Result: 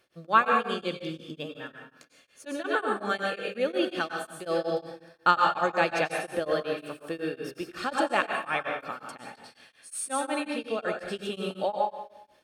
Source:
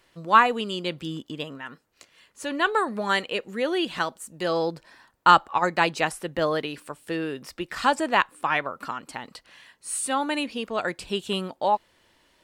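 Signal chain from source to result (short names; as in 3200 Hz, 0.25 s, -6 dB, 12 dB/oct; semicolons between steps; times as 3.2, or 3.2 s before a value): bell 550 Hz +3 dB 0.53 oct; notch 7400 Hz, Q 12; notch comb 990 Hz; plate-style reverb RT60 0.83 s, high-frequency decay 1×, pre-delay 80 ms, DRR 1 dB; beating tremolo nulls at 5.5 Hz; gain -3 dB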